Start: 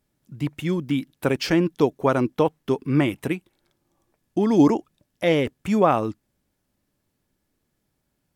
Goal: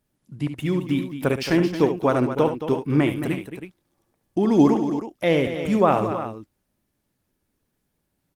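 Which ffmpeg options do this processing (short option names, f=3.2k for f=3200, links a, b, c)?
-af "aecho=1:1:47|71|221|320:0.1|0.335|0.282|0.266" -ar 48000 -c:a libopus -b:a 24k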